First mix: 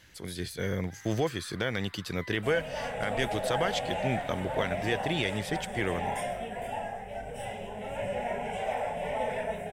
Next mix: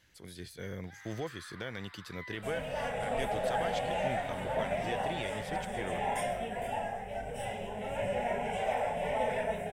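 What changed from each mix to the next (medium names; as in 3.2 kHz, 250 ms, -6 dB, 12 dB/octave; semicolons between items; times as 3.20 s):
speech -9.5 dB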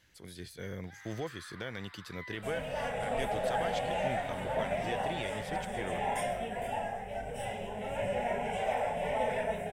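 no change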